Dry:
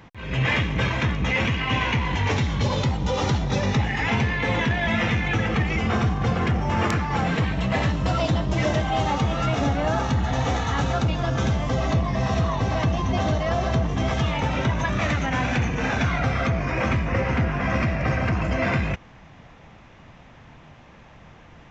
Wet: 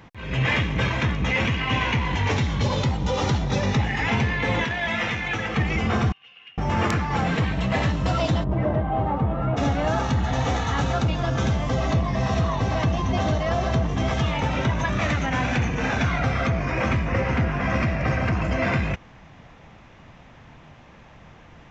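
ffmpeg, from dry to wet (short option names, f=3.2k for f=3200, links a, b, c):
-filter_complex "[0:a]asettb=1/sr,asplit=3[a][b][c];[a]atrim=end=4.644[d];[b]atrim=start=4.64:end=5.57,asetpts=PTS-STARTPTS,afade=t=in:d=0.004:c=qsin,afade=t=out:st=0.926:d=0.004:c=qsin,lowshelf=f=370:g=-9.5[e];[c]atrim=start=5.566[f];[d][e]acrossfade=d=0.004:c1=hsin:c2=qsin[g];[g][f]acrossfade=d=0.004:c1=qsin:c2=hsin,asettb=1/sr,asplit=3[h][i][j];[h]atrim=end=6.124[k];[i]atrim=start=6.12:end=6.58,asetpts=PTS-STARTPTS,afade=t=in:d=0.004:c=qsin,afade=t=out:st=0.456:d=0.004:c=qsin,bandpass=f=2.8k:t=q:w=17[l];[j]atrim=start=6.576[m];[k][l]acrossfade=d=0.004:c1=hsin:c2=qsin[n];[n][m]acrossfade=d=0.004:c1=qsin:c2=hsin,asplit=3[o][p][q];[o]afade=t=out:st=8.43:d=0.02[r];[p]lowpass=1.1k,afade=t=in:st=8.43:d=0.02,afade=t=out:st=9.56:d=0.02[s];[q]afade=t=in:st=9.56:d=0.02[t];[r][s][t]amix=inputs=3:normalize=0"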